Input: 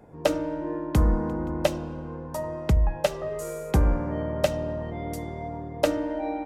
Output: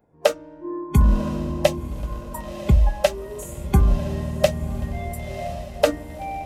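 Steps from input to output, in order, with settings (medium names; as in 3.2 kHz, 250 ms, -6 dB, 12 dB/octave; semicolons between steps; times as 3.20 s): 1.92–2.43 s: crackle 93 per s -54 dBFS; spectral noise reduction 18 dB; echo that smears into a reverb 1021 ms, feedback 51%, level -12 dB; trim +5.5 dB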